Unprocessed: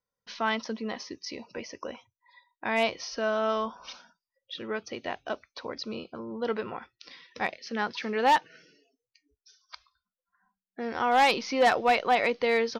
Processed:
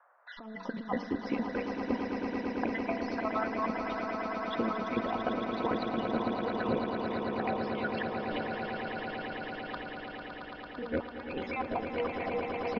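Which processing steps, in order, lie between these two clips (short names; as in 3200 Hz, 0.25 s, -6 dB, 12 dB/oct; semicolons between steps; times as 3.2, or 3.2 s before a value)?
random spectral dropouts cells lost 55%; tilt -2 dB/oct; comb 4.1 ms, depth 39%; de-hum 95.91 Hz, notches 11; negative-ratio compressor -36 dBFS, ratio -0.5; band noise 560–1600 Hz -65 dBFS; air absorption 420 m; swelling echo 0.112 s, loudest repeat 8, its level -8 dB; gain +2 dB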